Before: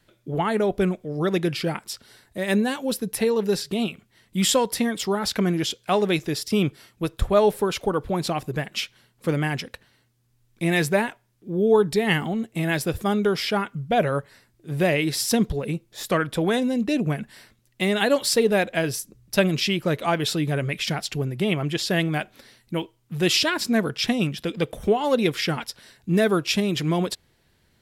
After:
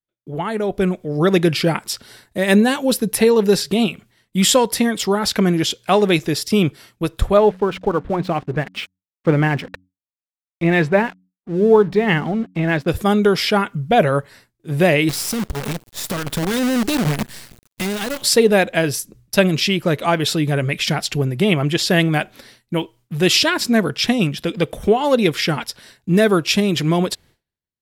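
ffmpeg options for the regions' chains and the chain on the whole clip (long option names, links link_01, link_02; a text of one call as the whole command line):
ffmpeg -i in.wav -filter_complex "[0:a]asettb=1/sr,asplit=3[link_01][link_02][link_03];[link_01]atrim=end=7.374[link_04];[link_02]atrim=start=7.37:end=12.88,asetpts=PTS-STARTPTS,afade=type=in:duration=0.004:curve=qsin,afade=type=out:start_time=5.506:duration=0.004:curve=qsin,lowpass=2400,aeval=exprs='sgn(val(0))*max(abs(val(0))-0.00473,0)':channel_layout=same,bandreject=frequency=92.36:width_type=h:width=4,bandreject=frequency=184.72:width_type=h:width=4,bandreject=frequency=277.08:width_type=h:width=4[link_05];[link_03]atrim=start=12.876[link_06];[link_04][link_05]acrossfade=duration=0.004:curve1=hsin:curve2=qsin[link_07];[link_07][link_06]acrossfade=duration=0.004:curve1=qsin:curve2=hsin,asettb=1/sr,asplit=3[link_08][link_09][link_10];[link_08]atrim=end=15.094[link_11];[link_09]atrim=start=15.09:end=18.24,asetpts=PTS-STARTPTS,afade=type=in:duration=0.004:curve=qsin,afade=type=out:start_time=3.146:duration=0.004:curve=qsin,bass=frequency=250:gain=9,treble=frequency=4000:gain=7,acompressor=threshold=-32dB:ratio=3:attack=3.2:release=140:knee=1:detection=peak,acrusher=bits=6:dc=4:mix=0:aa=0.000001[link_12];[link_10]atrim=start=18.236[link_13];[link_11][link_12]acrossfade=duration=0.004:curve1=hsin:curve2=qsin[link_14];[link_14][link_13]acrossfade=duration=0.004:curve1=qsin:curve2=hsin,dynaudnorm=framelen=620:gausssize=3:maxgain=13dB,agate=range=-33dB:threshold=-41dB:ratio=3:detection=peak,volume=-1.5dB" out.wav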